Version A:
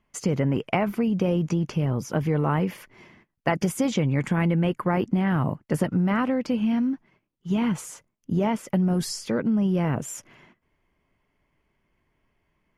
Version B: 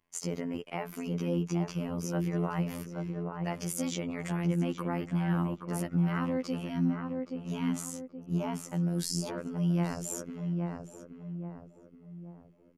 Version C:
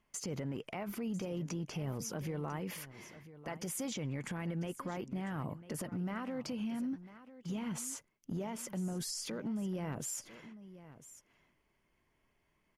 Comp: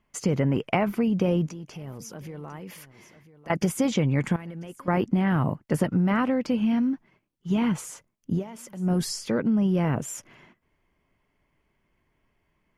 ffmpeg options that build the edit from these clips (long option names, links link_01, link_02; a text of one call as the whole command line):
ffmpeg -i take0.wav -i take1.wav -i take2.wav -filter_complex "[2:a]asplit=3[link_01][link_02][link_03];[0:a]asplit=4[link_04][link_05][link_06][link_07];[link_04]atrim=end=1.482[link_08];[link_01]atrim=start=1.478:end=3.502[link_09];[link_05]atrim=start=3.498:end=4.362[link_10];[link_02]atrim=start=4.358:end=4.882[link_11];[link_06]atrim=start=4.878:end=8.44[link_12];[link_03]atrim=start=8.34:end=8.89[link_13];[link_07]atrim=start=8.79[link_14];[link_08][link_09]acrossfade=duration=0.004:curve1=hsin:curve2=hsin[link_15];[link_15][link_10]acrossfade=duration=0.004:curve1=hsin:curve2=hsin[link_16];[link_16][link_11]acrossfade=duration=0.004:curve1=hsin:curve2=hsin[link_17];[link_17][link_12]acrossfade=duration=0.004:curve1=hsin:curve2=hsin[link_18];[link_18][link_13]acrossfade=duration=0.1:curve1=tri:curve2=tri[link_19];[link_19][link_14]acrossfade=duration=0.1:curve1=tri:curve2=tri" out.wav